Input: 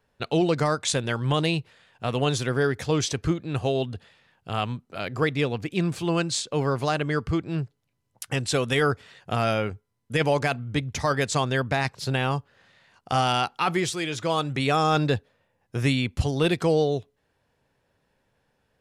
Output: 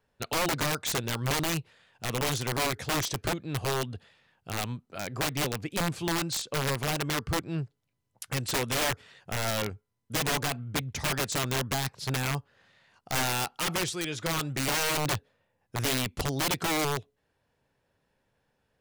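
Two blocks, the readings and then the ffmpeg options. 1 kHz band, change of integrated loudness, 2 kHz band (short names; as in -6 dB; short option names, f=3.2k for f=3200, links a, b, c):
-5.5 dB, -4.5 dB, -2.5 dB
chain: -af "aeval=exprs='(mod(8.41*val(0)+1,2)-1)/8.41':c=same,volume=-4dB"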